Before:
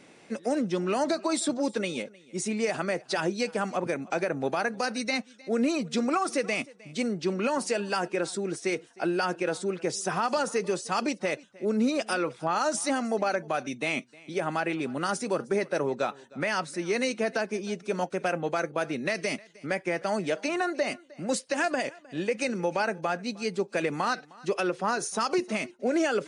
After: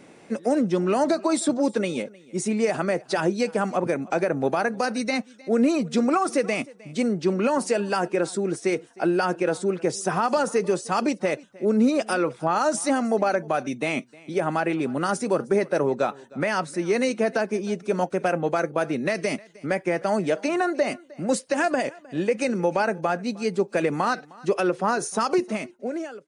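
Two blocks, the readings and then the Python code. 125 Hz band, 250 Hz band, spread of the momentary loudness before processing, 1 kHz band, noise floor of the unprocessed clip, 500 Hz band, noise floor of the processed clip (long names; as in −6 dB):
+6.0 dB, +5.5 dB, 5 LU, +4.5 dB, −55 dBFS, +5.5 dB, −51 dBFS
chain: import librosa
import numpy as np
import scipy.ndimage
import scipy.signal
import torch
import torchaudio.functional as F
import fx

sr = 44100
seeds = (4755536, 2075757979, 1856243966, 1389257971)

y = fx.fade_out_tail(x, sr, length_s=1.01)
y = fx.peak_eq(y, sr, hz=3900.0, db=-6.5, octaves=2.6)
y = F.gain(torch.from_numpy(y), 6.0).numpy()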